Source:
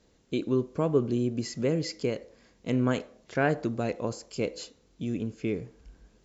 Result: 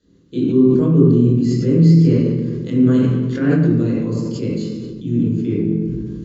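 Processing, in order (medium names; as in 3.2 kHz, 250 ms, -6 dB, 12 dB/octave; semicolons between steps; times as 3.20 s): reverberation RT60 1.1 s, pre-delay 18 ms, DRR -6.5 dB; decay stretcher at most 24 dB/s; trim -12 dB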